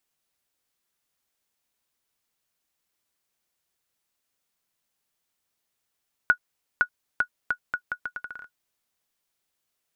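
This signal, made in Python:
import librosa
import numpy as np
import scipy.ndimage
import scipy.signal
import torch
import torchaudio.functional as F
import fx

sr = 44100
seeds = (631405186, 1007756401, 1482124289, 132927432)

y = fx.bouncing_ball(sr, first_gap_s=0.51, ratio=0.77, hz=1460.0, decay_ms=79.0, level_db=-7.5)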